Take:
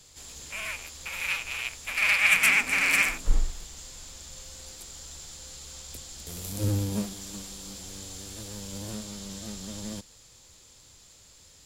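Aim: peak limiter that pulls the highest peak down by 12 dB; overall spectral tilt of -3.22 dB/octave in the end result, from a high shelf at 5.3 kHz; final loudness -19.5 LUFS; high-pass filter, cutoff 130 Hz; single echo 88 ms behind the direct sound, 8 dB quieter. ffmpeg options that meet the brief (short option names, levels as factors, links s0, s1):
-af "highpass=130,highshelf=f=5300:g=-7,alimiter=limit=0.1:level=0:latency=1,aecho=1:1:88:0.398,volume=4.73"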